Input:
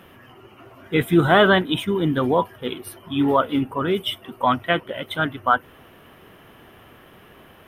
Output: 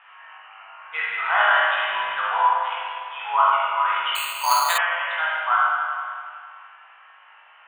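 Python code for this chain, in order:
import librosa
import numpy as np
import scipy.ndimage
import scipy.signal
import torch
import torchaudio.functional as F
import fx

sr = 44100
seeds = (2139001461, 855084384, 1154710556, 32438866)

p1 = scipy.signal.sosfilt(scipy.signal.ellip(3, 1.0, 50, [840.0, 2800.0], 'bandpass', fs=sr, output='sos'), x)
p2 = fx.rider(p1, sr, range_db=3, speed_s=0.5)
p3 = p2 + fx.room_flutter(p2, sr, wall_m=3.3, rt60_s=0.26, dry=0)
p4 = fx.rev_spring(p3, sr, rt60_s=2.2, pass_ms=(40, 50), chirp_ms=65, drr_db=-5.5)
p5 = fx.resample_bad(p4, sr, factor=8, down='none', up='hold', at=(4.15, 4.78))
y = F.gain(torch.from_numpy(p5), -2.5).numpy()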